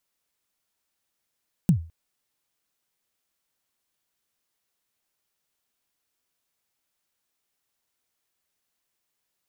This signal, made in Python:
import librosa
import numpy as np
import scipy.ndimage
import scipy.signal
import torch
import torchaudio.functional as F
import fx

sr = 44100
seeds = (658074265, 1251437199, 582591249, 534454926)

y = fx.drum_kick(sr, seeds[0], length_s=0.21, level_db=-11.0, start_hz=200.0, end_hz=82.0, sweep_ms=96.0, decay_s=0.35, click=True)